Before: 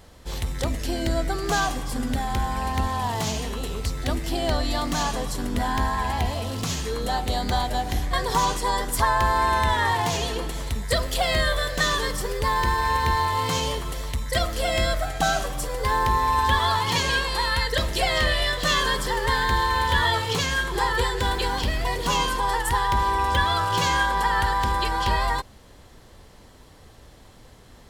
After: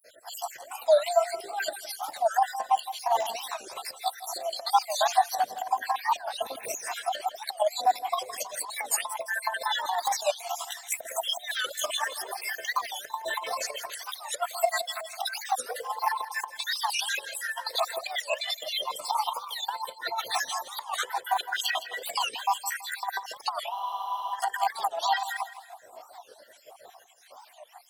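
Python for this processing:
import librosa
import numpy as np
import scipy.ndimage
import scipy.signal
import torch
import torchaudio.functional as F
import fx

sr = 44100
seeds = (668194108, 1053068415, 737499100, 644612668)

p1 = fx.spec_dropout(x, sr, seeds[0], share_pct=74)
p2 = fx.chorus_voices(p1, sr, voices=4, hz=0.52, base_ms=15, depth_ms=2.1, mix_pct=65)
p3 = fx.dereverb_blind(p2, sr, rt60_s=0.58)
p4 = fx.over_compress(p3, sr, threshold_db=-34.0, ratio=-0.5)
p5 = fx.highpass_res(p4, sr, hz=690.0, q=6.4)
p6 = fx.high_shelf(p5, sr, hz=8600.0, db=10.0)
p7 = p6 + fx.echo_feedback(p6, sr, ms=164, feedback_pct=37, wet_db=-13, dry=0)
p8 = fx.spec_freeze(p7, sr, seeds[1], at_s=23.71, hold_s=0.63)
y = fx.record_warp(p8, sr, rpm=45.0, depth_cents=250.0)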